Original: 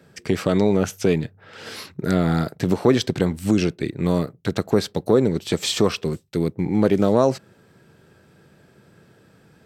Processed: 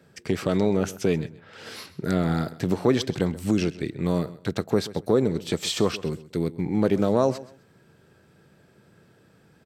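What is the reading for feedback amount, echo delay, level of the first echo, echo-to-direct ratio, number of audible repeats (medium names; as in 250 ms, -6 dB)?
24%, 130 ms, -17.5 dB, -17.5 dB, 2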